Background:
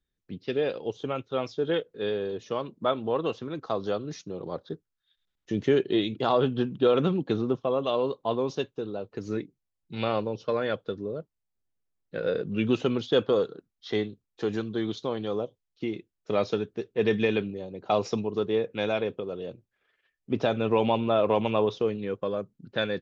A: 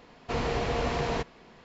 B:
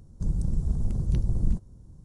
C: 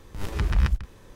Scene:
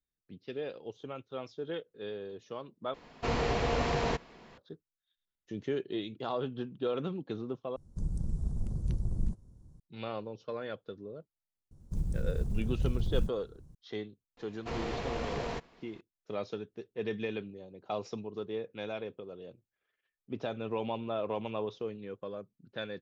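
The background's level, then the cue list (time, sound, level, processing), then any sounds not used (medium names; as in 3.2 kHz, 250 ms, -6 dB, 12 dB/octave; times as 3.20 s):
background -11 dB
2.94 s: replace with A -1 dB
7.76 s: replace with B -7 dB
11.71 s: add B -6 dB + block-companded coder 7-bit
14.37 s: add A -6 dB + partial rectifier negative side -3 dB
not used: C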